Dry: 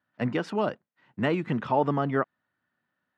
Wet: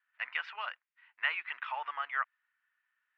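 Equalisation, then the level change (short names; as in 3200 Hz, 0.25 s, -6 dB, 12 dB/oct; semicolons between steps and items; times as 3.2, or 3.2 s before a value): HPF 1000 Hz 24 dB/oct; ladder low-pass 2900 Hz, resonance 40%; tilt shelf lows -6 dB, about 1400 Hz; +5.0 dB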